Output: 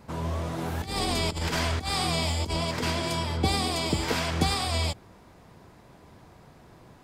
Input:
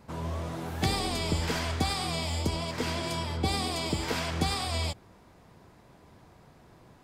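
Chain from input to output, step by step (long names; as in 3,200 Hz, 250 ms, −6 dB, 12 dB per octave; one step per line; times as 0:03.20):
0:00.58–0:02.91: compressor whose output falls as the input rises −31 dBFS, ratio −0.5
level +3.5 dB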